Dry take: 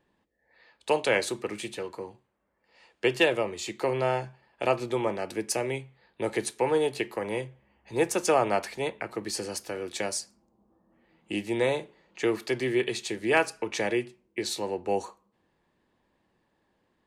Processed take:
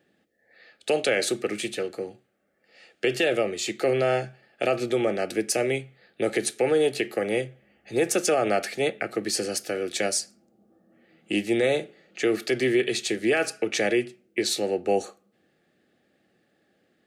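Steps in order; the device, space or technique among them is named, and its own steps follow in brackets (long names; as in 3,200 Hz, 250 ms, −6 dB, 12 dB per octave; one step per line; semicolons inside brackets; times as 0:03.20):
PA system with an anti-feedback notch (high-pass filter 140 Hz 12 dB per octave; Butterworth band-reject 980 Hz, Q 2.3; brickwall limiter −19.5 dBFS, peak gain reduction 9.5 dB)
level +6 dB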